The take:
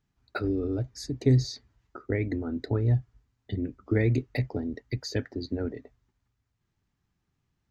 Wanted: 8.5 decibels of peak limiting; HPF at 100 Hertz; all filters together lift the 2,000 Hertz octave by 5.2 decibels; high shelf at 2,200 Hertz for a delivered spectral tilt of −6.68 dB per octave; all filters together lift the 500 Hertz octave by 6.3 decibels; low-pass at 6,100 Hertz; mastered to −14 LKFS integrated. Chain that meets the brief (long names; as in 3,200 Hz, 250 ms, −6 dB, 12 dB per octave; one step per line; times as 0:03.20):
high-pass filter 100 Hz
low-pass filter 6,100 Hz
parametric band 500 Hz +8 dB
parametric band 2,000 Hz +7.5 dB
high-shelf EQ 2,200 Hz −4 dB
level +15.5 dB
brickwall limiter −0.5 dBFS